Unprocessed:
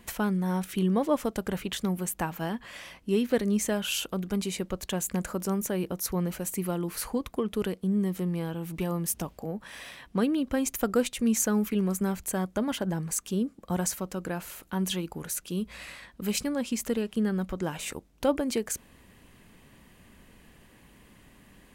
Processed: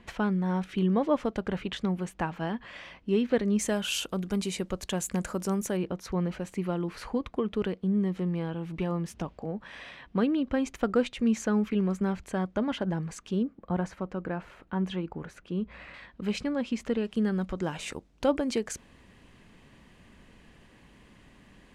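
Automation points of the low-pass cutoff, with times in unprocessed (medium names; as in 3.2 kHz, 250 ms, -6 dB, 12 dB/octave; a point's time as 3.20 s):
3.6 kHz
from 3.59 s 9.2 kHz
from 5.77 s 3.5 kHz
from 13.43 s 2 kHz
from 15.94 s 3.4 kHz
from 17.04 s 6.4 kHz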